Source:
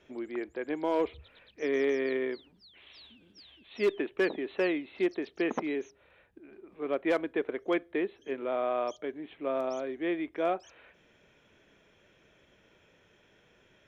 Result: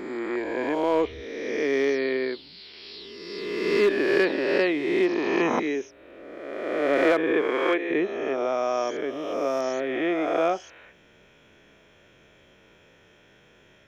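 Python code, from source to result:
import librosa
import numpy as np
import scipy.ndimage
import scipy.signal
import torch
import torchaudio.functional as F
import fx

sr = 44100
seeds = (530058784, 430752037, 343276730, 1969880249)

y = fx.spec_swells(x, sr, rise_s=1.73)
y = fx.highpass(y, sr, hz=fx.line((7.43, 160.0), (7.89, 410.0)), slope=12, at=(7.43, 7.89), fade=0.02)
y = y * 10.0 ** (4.0 / 20.0)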